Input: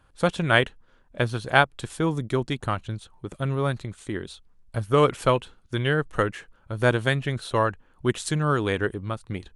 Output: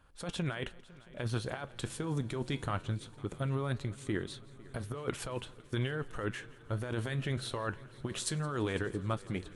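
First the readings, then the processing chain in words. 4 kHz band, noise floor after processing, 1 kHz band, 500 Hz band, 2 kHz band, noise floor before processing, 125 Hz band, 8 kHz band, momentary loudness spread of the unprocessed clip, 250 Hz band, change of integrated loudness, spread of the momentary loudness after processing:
-10.5 dB, -55 dBFS, -15.5 dB, -13.5 dB, -15.0 dB, -60 dBFS, -8.5 dB, -4.0 dB, 13 LU, -9.5 dB, -12.0 dB, 8 LU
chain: compressor with a negative ratio -27 dBFS, ratio -1; on a send: multi-head delay 168 ms, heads first and third, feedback 74%, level -23 dB; on the sum: flange 0.21 Hz, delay 4.3 ms, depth 8.2 ms, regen -77%; trim -3 dB

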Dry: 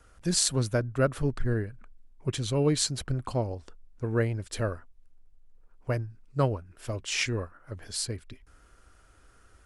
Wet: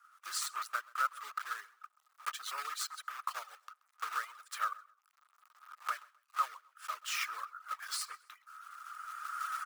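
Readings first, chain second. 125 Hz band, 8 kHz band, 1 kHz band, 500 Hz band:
under -40 dB, -10.0 dB, +3.5 dB, -29.5 dB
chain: block-companded coder 3-bit; recorder AGC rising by 16 dB/s; reverb removal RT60 0.56 s; ladder high-pass 1.2 kHz, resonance 85%; on a send: feedback delay 130 ms, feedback 28%, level -23 dB

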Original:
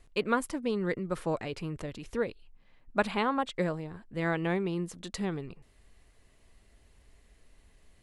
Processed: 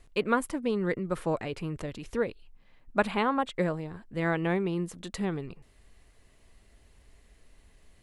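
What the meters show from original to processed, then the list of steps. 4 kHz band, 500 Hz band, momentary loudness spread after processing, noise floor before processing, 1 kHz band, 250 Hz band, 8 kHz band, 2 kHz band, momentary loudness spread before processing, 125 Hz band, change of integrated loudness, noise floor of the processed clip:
0.0 dB, +2.0 dB, 9 LU, -63 dBFS, +2.0 dB, +2.0 dB, 0.0 dB, +1.5 dB, 9 LU, +2.0 dB, +2.0 dB, -61 dBFS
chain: dynamic bell 5.2 kHz, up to -5 dB, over -53 dBFS, Q 1.2; trim +2 dB

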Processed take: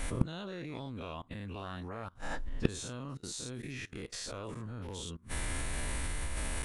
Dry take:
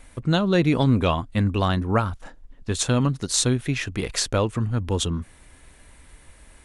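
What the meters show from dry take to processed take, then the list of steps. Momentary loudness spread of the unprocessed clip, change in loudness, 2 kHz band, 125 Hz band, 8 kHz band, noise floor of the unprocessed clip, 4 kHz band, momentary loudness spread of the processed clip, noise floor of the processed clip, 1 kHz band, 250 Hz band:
10 LU, -16.5 dB, -10.5 dB, -16.5 dB, -13.0 dB, -51 dBFS, -15.0 dB, 7 LU, -58 dBFS, -16.0 dB, -17.0 dB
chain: every event in the spectrogram widened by 120 ms; level held to a coarse grid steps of 23 dB; inverted gate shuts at -23 dBFS, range -30 dB; trim +11.5 dB

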